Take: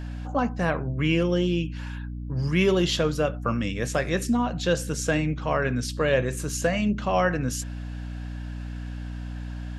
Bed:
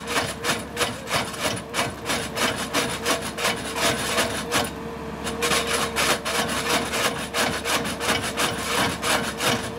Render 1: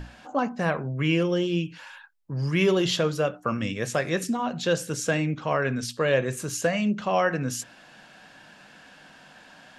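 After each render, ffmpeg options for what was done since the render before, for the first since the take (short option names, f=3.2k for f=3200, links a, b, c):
-af "bandreject=f=60:t=h:w=6,bandreject=f=120:t=h:w=6,bandreject=f=180:t=h:w=6,bandreject=f=240:t=h:w=6,bandreject=f=300:t=h:w=6"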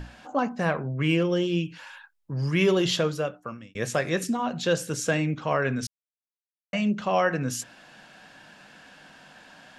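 -filter_complex "[0:a]asettb=1/sr,asplit=3[a][b][c];[a]atrim=end=0.684[d];[b]atrim=start=0.68:end=1.31,asetpts=PTS-STARTPTS,afade=t=in:d=0.004:c=qsin,afade=t=out:st=0.626:d=0.004:c=qsin,adynamicsmooth=sensitivity=3.5:basefreq=6.2k[e];[c]atrim=start=1.306[f];[d][e]acrossfade=d=0.004:c1=hsin:c2=qsin[g];[g][f]acrossfade=d=0.004:c1=qsin:c2=hsin,asplit=4[h][i][j][k];[h]atrim=end=3.75,asetpts=PTS-STARTPTS,afade=t=out:st=2.98:d=0.77[l];[i]atrim=start=3.75:end=5.87,asetpts=PTS-STARTPTS,afade=t=in:d=0.004:c=hsin,afade=t=out:st=2.116:d=0.004:c=hsin[m];[j]atrim=start=5.87:end=6.73,asetpts=PTS-STARTPTS,volume=0[n];[k]atrim=start=6.73,asetpts=PTS-STARTPTS,afade=t=in:d=0.004:c=hsin[o];[l][m][n][o]concat=n=4:v=0:a=1"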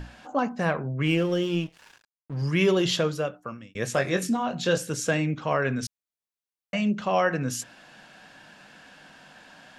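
-filter_complex "[0:a]asettb=1/sr,asplit=3[a][b][c];[a]atrim=end=1.064[d];[b]atrim=start=1.06:end=2.42,asetpts=PTS-STARTPTS,afade=t=in:d=0.004:c=qsin,afade=t=out:st=1.356:d=0.004:c=qsin,aeval=exprs='sgn(val(0))*max(abs(val(0))-0.00668,0)':c=same[e];[c]atrim=start=2.416[f];[d][e]acrossfade=d=0.004:c1=hsin:c2=qsin[g];[g][f]acrossfade=d=0.004:c1=qsin:c2=hsin,asettb=1/sr,asplit=3[h][i][j];[h]atrim=end=3.944[k];[i]atrim=start=3.94:end=4.78,asetpts=PTS-STARTPTS,afade=t=in:d=0.004:c=qsin,afade=t=out:st=0.836:d=0.004:c=qsin,asplit=2[l][m];[m]adelay=22,volume=-7.5dB[n];[l][n]amix=inputs=2:normalize=0,atrim=end_sample=37044[o];[j]atrim=start=4.776[p];[k][o]acrossfade=d=0.004:c1=hsin:c2=qsin[q];[q][p]acrossfade=d=0.004:c1=qsin:c2=hsin"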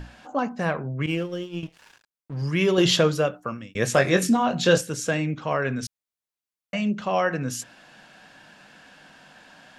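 -filter_complex "[0:a]asettb=1/sr,asplit=3[a][b][c];[a]atrim=end=1.064[d];[b]atrim=start=1.06:end=1.63,asetpts=PTS-STARTPTS,afade=t=in:d=0.004:c=qsin,afade=t=out:st=0.566:d=0.004:c=qsin,agate=range=-33dB:threshold=-20dB:ratio=3:release=100:detection=peak[e];[c]atrim=start=1.626[f];[d][e]acrossfade=d=0.004:c1=hsin:c2=qsin[g];[g][f]acrossfade=d=0.004:c1=qsin:c2=hsin,asplit=3[h][i][j];[h]atrim=end=2.782[k];[i]atrim=start=2.778:end=4.812,asetpts=PTS-STARTPTS,volume=5.5dB[l];[j]atrim=start=4.808[m];[k][l]acrossfade=d=0.004:c1=hsin:c2=hsin[n];[n][m]acrossfade=d=0.004:c1=hsin:c2=hsin"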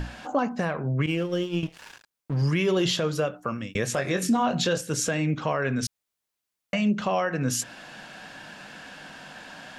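-filter_complex "[0:a]asplit=2[a][b];[b]acompressor=threshold=-32dB:ratio=6,volume=2dB[c];[a][c]amix=inputs=2:normalize=0,alimiter=limit=-15dB:level=0:latency=1:release=240"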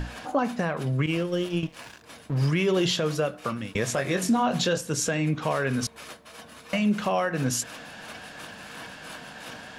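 -filter_complex "[1:a]volume=-21.5dB[a];[0:a][a]amix=inputs=2:normalize=0"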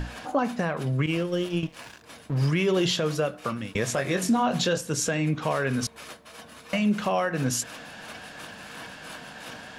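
-af anull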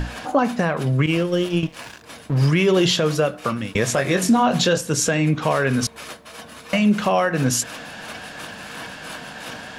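-af "volume=6.5dB"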